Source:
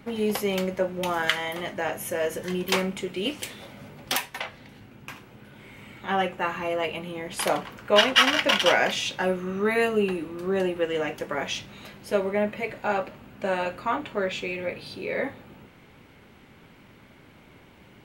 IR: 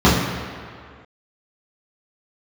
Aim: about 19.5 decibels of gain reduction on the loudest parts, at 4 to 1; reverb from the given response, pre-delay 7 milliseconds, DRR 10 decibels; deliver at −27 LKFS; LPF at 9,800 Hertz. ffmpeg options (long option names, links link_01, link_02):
-filter_complex "[0:a]lowpass=9800,acompressor=threshold=-37dB:ratio=4,asplit=2[link_01][link_02];[1:a]atrim=start_sample=2205,adelay=7[link_03];[link_02][link_03]afir=irnorm=-1:irlink=0,volume=-36dB[link_04];[link_01][link_04]amix=inputs=2:normalize=0,volume=11dB"